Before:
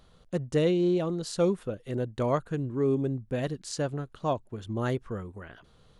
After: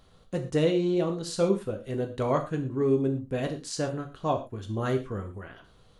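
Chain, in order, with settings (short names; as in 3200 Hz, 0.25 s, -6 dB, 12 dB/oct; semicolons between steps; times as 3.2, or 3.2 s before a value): non-linear reverb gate 0.15 s falling, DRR 3 dB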